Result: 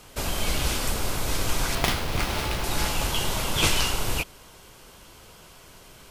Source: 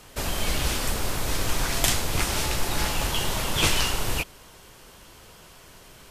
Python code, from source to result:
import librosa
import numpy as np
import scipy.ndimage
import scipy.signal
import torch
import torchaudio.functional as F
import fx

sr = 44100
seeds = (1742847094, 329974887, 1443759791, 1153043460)

y = fx.notch(x, sr, hz=1800.0, q=16.0)
y = fx.running_max(y, sr, window=5, at=(1.75, 2.64))